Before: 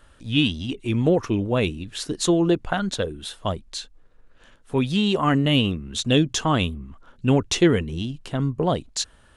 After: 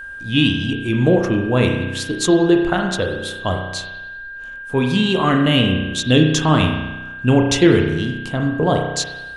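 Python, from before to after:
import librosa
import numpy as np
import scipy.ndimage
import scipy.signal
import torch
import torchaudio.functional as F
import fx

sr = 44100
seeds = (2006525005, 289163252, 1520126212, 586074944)

y = fx.rev_spring(x, sr, rt60_s=1.1, pass_ms=(32,), chirp_ms=70, drr_db=2.5)
y = y + 10.0 ** (-34.0 / 20.0) * np.sin(2.0 * np.pi * 1600.0 * np.arange(len(y)) / sr)
y = y * 10.0 ** (3.5 / 20.0)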